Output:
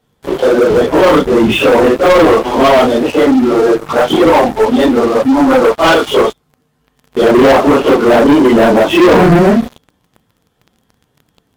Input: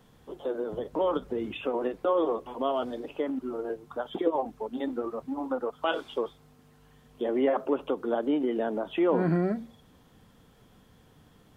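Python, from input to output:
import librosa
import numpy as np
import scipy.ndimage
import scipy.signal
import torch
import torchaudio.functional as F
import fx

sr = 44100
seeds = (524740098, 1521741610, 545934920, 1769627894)

y = fx.phase_scramble(x, sr, seeds[0], window_ms=100)
y = fx.highpass(y, sr, hz=46.0, slope=6)
y = fx.leveller(y, sr, passes=5)
y = y * librosa.db_to_amplitude(8.5)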